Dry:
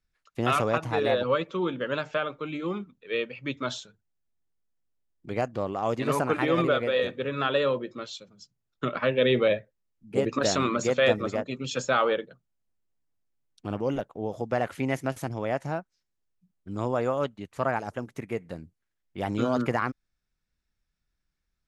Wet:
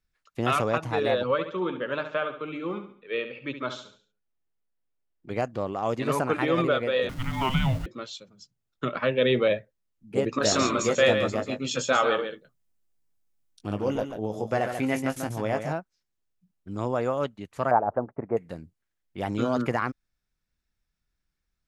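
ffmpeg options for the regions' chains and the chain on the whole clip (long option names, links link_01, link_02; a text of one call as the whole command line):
ffmpeg -i in.wav -filter_complex "[0:a]asettb=1/sr,asplit=3[link_01][link_02][link_03];[link_01]atrim=end=1.314[link_04];[link_02]atrim=start=1.31:end=5.3,asetpts=PTS-STARTPTS,afade=type=in:duration=0.004:curve=qsin,afade=type=out:start_time=3.986:duration=0.004:curve=qsin,bass=frequency=250:gain=-5,treble=frequency=4000:gain=-10,aecho=1:1:70|140|210|280:0.316|0.126|0.0506|0.0202,atrim=end_sample=175959[link_05];[link_03]atrim=start=5.296[link_06];[link_04][link_05]acrossfade=duration=0.004:curve1=hsin:curve2=qsin[link_07];[link_07][link_06]acrossfade=duration=0.004:curve1=qsin:curve2=hsin,asettb=1/sr,asplit=3[link_08][link_09][link_10];[link_08]atrim=end=7.094[link_11];[link_09]atrim=start=7.09:end=7.86,asetpts=PTS-STARTPTS,afade=type=in:duration=0.004:curve=qsin,afade=type=out:start_time=0.766:duration=0.004:curve=qsin,aeval=exprs='val(0)+0.5*0.015*sgn(val(0))':channel_layout=same,afreqshift=-400[link_12];[link_10]atrim=start=7.856[link_13];[link_11][link_12]acrossfade=duration=0.004:curve1=hsin:curve2=qsin[link_14];[link_14][link_13]acrossfade=duration=0.004:curve1=qsin:curve2=hsin,asettb=1/sr,asplit=3[link_15][link_16][link_17];[link_15]atrim=end=10.384[link_18];[link_16]atrim=start=10.38:end=15.73,asetpts=PTS-STARTPTS,afade=type=in:duration=0.004:curve=qsin,afade=type=out:start_time=5.346:duration=0.004:curve=qsin,highshelf=frequency=5300:gain=6,asplit=2[link_19][link_20];[link_20]adelay=19,volume=-8.5dB[link_21];[link_19][link_21]amix=inputs=2:normalize=0,atrim=end_sample=235935,aecho=1:1:139:0.422,atrim=end_sample=235935[link_22];[link_17]atrim=start=15.726[link_23];[link_18][link_22]acrossfade=duration=0.004:curve1=hsin:curve2=qsin[link_24];[link_24][link_23]acrossfade=duration=0.004:curve1=qsin:curve2=hsin,asettb=1/sr,asplit=3[link_25][link_26][link_27];[link_25]atrim=end=17.714[link_28];[link_26]atrim=start=17.71:end=18.37,asetpts=PTS-STARTPTS,afade=type=in:duration=0.004:curve=qsin,afade=type=out:start_time=0.656:duration=0.004:curve=qsin,lowpass=frequency=1400:width=0.5412,lowpass=frequency=1400:width=1.3066,agate=range=-33dB:threshold=-52dB:ratio=3:release=100:detection=peak,equalizer=frequency=710:width_type=o:width=1.4:gain=11.5[link_29];[link_27]atrim=start=18.366[link_30];[link_28][link_29]acrossfade=duration=0.004:curve1=hsin:curve2=qsin[link_31];[link_31][link_30]acrossfade=duration=0.004:curve1=qsin:curve2=hsin" out.wav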